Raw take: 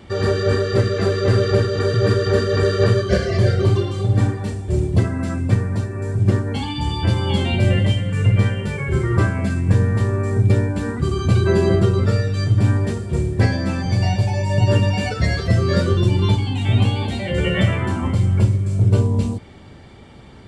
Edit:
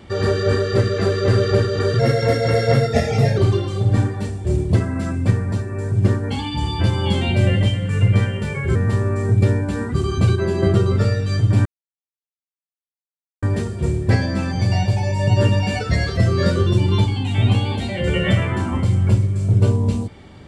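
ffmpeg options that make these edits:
ffmpeg -i in.wav -filter_complex "[0:a]asplit=7[link_01][link_02][link_03][link_04][link_05][link_06][link_07];[link_01]atrim=end=1.994[link_08];[link_02]atrim=start=1.99:end=3.61,asetpts=PTS-STARTPTS,asetrate=51597,aresample=44100[link_09];[link_03]atrim=start=3.606:end=8.992[link_10];[link_04]atrim=start=9.828:end=11.432[link_11];[link_05]atrim=start=11.428:end=11.702,asetpts=PTS-STARTPTS,volume=-4.5dB[link_12];[link_06]atrim=start=11.698:end=12.73,asetpts=PTS-STARTPTS,afade=type=out:start_time=1.028:duration=0.004:curve=hsin,apad=pad_dur=1.77[link_13];[link_07]atrim=start=12.73,asetpts=PTS-STARTPTS,afade=type=in:duration=0.004:curve=hsin[link_14];[link_08][link_09]acrossfade=duration=0.004:curve1=hsin:curve2=hsin[link_15];[link_15][link_10]acrossfade=duration=0.004:curve1=hsin:curve2=hsin[link_16];[link_16][link_11]acrossfade=duration=0.004:curve1=hsin:curve2=hsin[link_17];[link_17][link_12]acrossfade=duration=0.004:curve1=hsin:curve2=hsin[link_18];[link_13][link_14]concat=n=2:v=0:a=1[link_19];[link_18][link_19]acrossfade=duration=0.004:curve1=hsin:curve2=hsin" out.wav

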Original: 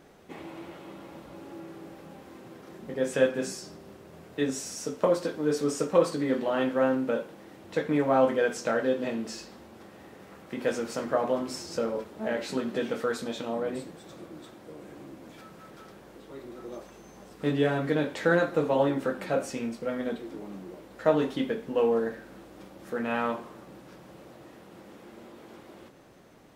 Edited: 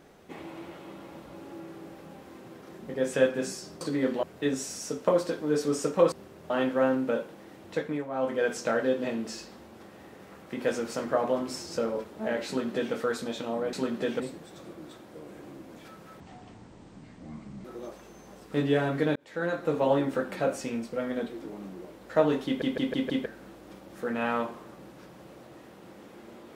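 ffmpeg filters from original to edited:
ffmpeg -i in.wav -filter_complex "[0:a]asplit=17[link_01][link_02][link_03][link_04][link_05][link_06][link_07][link_08][link_09][link_10][link_11][link_12][link_13][link_14][link_15][link_16][link_17];[link_01]atrim=end=3.812[link_18];[link_02]atrim=start=6.078:end=6.502[link_19];[link_03]atrim=start=4.188:end=6.082[link_20];[link_04]atrim=start=3.808:end=4.192[link_21];[link_05]atrim=start=6.498:end=8.08,asetpts=PTS-STARTPTS,afade=type=out:start_time=1.182:duration=0.4:silence=0.237137[link_22];[link_06]atrim=start=8.08:end=8.11,asetpts=PTS-STARTPTS,volume=-12.5dB[link_23];[link_07]atrim=start=8.11:end=13.732,asetpts=PTS-STARTPTS,afade=type=in:duration=0.4:silence=0.237137[link_24];[link_08]atrim=start=12.468:end=12.942[link_25];[link_09]atrim=start=13.728:end=15.734[link_26];[link_10]atrim=start=15.73:end=16.54,asetpts=PTS-STARTPTS,asetrate=24696,aresample=44100,atrim=end_sample=63787,asetpts=PTS-STARTPTS[link_27];[link_11]atrim=start=16.536:end=18.05,asetpts=PTS-STARTPTS,afade=type=out:start_time=1.51:duration=0.004:curve=hsin[link_28];[link_12]atrim=start=18.05:end=21.512,asetpts=PTS-STARTPTS,afade=type=in:duration=0.67[link_29];[link_13]atrim=start=21.348:end=21.512[link_30];[link_14]atrim=start=21.348:end=21.512[link_31];[link_15]atrim=start=21.348:end=21.512[link_32];[link_16]atrim=start=21.348:end=21.512[link_33];[link_17]atrim=start=22.148[link_34];[link_18][link_19]acrossfade=duration=0.004:curve1=hsin:curve2=hsin[link_35];[link_35][link_20]acrossfade=duration=0.004:curve1=hsin:curve2=hsin[link_36];[link_36][link_21]acrossfade=duration=0.004:curve1=hsin:curve2=hsin[link_37];[link_22][link_23][link_24]concat=n=3:v=0:a=1[link_38];[link_37][link_38]acrossfade=duration=0.004:curve1=hsin:curve2=hsin[link_39];[link_39][link_25]acrossfade=duration=0.004:curve1=hsin:curve2=hsin[link_40];[link_40][link_26]acrossfade=duration=0.004:curve1=hsin:curve2=hsin[link_41];[link_41][link_27]acrossfade=duration=0.004:curve1=hsin:curve2=hsin[link_42];[link_28][link_29]concat=n=2:v=0:a=1[link_43];[link_42][link_43]acrossfade=duration=0.004:curve1=hsin:curve2=hsin[link_44];[link_44][link_30]acrossfade=duration=0.004:curve1=hsin:curve2=hsin[link_45];[link_45][link_31]acrossfade=duration=0.004:curve1=hsin:curve2=hsin[link_46];[link_46][link_32]acrossfade=duration=0.004:curve1=hsin:curve2=hsin[link_47];[link_47][link_33]acrossfade=duration=0.004:curve1=hsin:curve2=hsin[link_48];[link_48][link_34]acrossfade=duration=0.004:curve1=hsin:curve2=hsin" out.wav

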